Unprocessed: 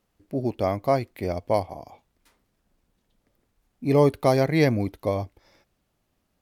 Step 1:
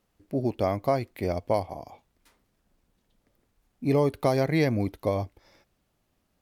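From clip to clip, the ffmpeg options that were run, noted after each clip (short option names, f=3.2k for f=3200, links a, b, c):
-af "acompressor=threshold=-20dB:ratio=3"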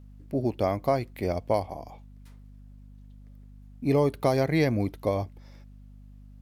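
-af "aeval=exprs='val(0)+0.00447*(sin(2*PI*50*n/s)+sin(2*PI*2*50*n/s)/2+sin(2*PI*3*50*n/s)/3+sin(2*PI*4*50*n/s)/4+sin(2*PI*5*50*n/s)/5)':c=same"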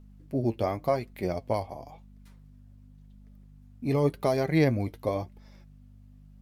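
-af "flanger=delay=4.6:depth=4.2:regen=49:speed=0.92:shape=sinusoidal,volume=2dB"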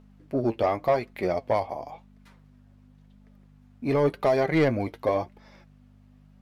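-filter_complex "[0:a]asplit=2[a][b];[b]highpass=f=720:p=1,volume=16dB,asoftclip=type=tanh:threshold=-11dB[c];[a][c]amix=inputs=2:normalize=0,lowpass=f=1.9k:p=1,volume=-6dB"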